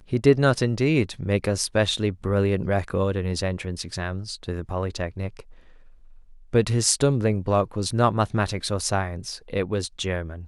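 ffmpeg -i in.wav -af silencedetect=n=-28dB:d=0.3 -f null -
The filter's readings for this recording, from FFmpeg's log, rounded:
silence_start: 5.40
silence_end: 6.53 | silence_duration: 1.13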